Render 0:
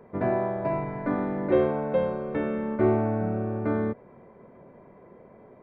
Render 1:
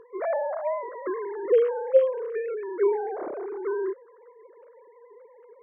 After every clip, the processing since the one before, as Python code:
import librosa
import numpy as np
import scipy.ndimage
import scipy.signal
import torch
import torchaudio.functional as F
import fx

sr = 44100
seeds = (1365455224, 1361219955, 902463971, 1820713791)

y = fx.sine_speech(x, sr)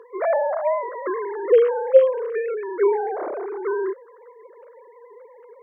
y = scipy.signal.sosfilt(scipy.signal.butter(2, 410.0, 'highpass', fs=sr, output='sos'), x)
y = y * librosa.db_to_amplitude(7.0)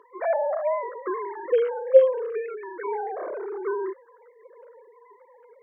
y = fx.comb_cascade(x, sr, direction='falling', hz=0.78)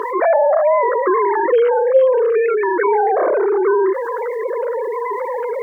y = fx.env_flatten(x, sr, amount_pct=70)